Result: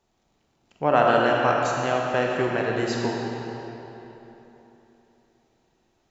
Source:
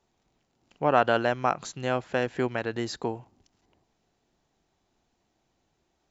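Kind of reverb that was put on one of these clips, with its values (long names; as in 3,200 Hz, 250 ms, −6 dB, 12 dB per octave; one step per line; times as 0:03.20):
comb and all-pass reverb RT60 3.5 s, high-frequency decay 0.75×, pre-delay 5 ms, DRR −1.5 dB
level +1 dB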